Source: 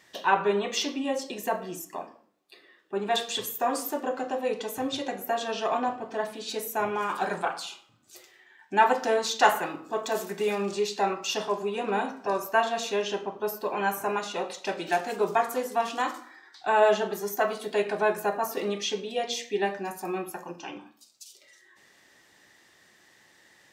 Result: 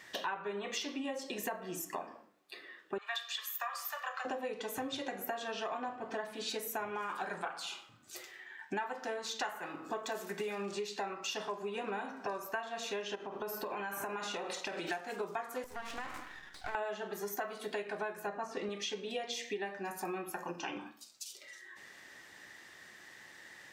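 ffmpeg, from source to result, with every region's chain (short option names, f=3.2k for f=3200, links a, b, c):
-filter_complex "[0:a]asettb=1/sr,asplit=3[a][b][c];[a]atrim=end=2.984[d];[b]atrim=start=2.98:end=4.25,asetpts=PTS-STARTPTS,afade=t=in:d=0.004:c=qsin,afade=t=out:st=1.266:d=0.004:c=qsin,highpass=f=1k:w=0.5412,highpass=f=1k:w=1.3066,equalizer=f=8.9k:w=1.6:g=-9.5,aecho=1:1:1.7:0.46,atrim=end_sample=56007[e];[c]atrim=start=4.246[f];[d][e]acrossfade=d=0.004:c1=hsin:c2=qsin[g];[g][f]acrossfade=d=0.004:c1=qsin:c2=hsin,asettb=1/sr,asplit=3[h][i][j];[h]atrim=end=13.154[k];[i]atrim=start=13.15:end=14.89,asetpts=PTS-STARTPTS,afade=t=in:d=0.004:c=qsin,afade=t=out:st=1.736:d=0.004:c=qsin,asplit=2[l][m];[m]adelay=49,volume=-12dB[n];[l][n]amix=inputs=2:normalize=0,atrim=end_sample=76734,acompressor=threshold=-35dB:ratio=6:attack=3.2:release=140:knee=1:detection=peak[o];[j]atrim=start=14.886[p];[k][o]acrossfade=d=0.004:c1=hsin:c2=qsin[q];[q][p]acrossfade=d=0.004:c1=qsin:c2=hsin,asettb=1/sr,asplit=3[r][s][t];[r]atrim=end=15.644[u];[s]atrim=start=15.64:end=16.75,asetpts=PTS-STARTPTS,afade=t=in:d=0.004:c=qsin,afade=t=out:st=1.106:d=0.004:c=qsin,acompressor=threshold=-37dB:ratio=3:attack=3.2:release=140:knee=1:detection=peak,highpass=f=240:w=0.5412,highpass=f=240:w=1.3066,aeval=exprs='max(val(0),0)':c=same[v];[t]atrim=start=16.746[w];[u][v]acrossfade=d=0.004:c1=hsin:c2=qsin[x];[x][w]acrossfade=d=0.004:c1=qsin:c2=hsin,asettb=1/sr,asplit=3[y][z][aa];[y]atrim=end=18.274[ab];[z]atrim=start=18.27:end=18.69,asetpts=PTS-STARTPTS,afade=t=in:d=0.004:c=qsin,afade=t=out:st=0.416:d=0.004:c=qsin,lowpass=f=7.6k:w=0.5412,lowpass=f=7.6k:w=1.3066,lowshelf=f=200:g=9.5[ac];[aa]atrim=start=18.686[ad];[ab][ac]acrossfade=d=0.004:c1=hsin:c2=qsin[ae];[ae][ad]acrossfade=d=0.004:c1=qsin:c2=hsin,equalizer=f=1.7k:w=1.1:g=5,acompressor=threshold=-37dB:ratio=10,volume=1.5dB"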